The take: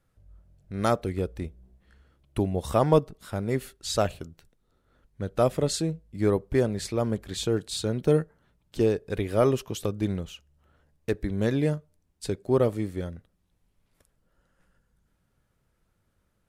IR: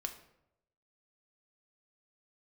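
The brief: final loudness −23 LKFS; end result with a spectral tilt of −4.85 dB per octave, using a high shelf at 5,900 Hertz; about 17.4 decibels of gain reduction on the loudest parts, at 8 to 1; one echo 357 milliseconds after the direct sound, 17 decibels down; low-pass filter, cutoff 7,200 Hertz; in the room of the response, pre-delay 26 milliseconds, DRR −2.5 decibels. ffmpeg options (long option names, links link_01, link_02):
-filter_complex "[0:a]lowpass=7200,highshelf=frequency=5900:gain=9,acompressor=threshold=-35dB:ratio=8,aecho=1:1:357:0.141,asplit=2[link_01][link_02];[1:a]atrim=start_sample=2205,adelay=26[link_03];[link_02][link_03]afir=irnorm=-1:irlink=0,volume=3.5dB[link_04];[link_01][link_04]amix=inputs=2:normalize=0,volume=13dB"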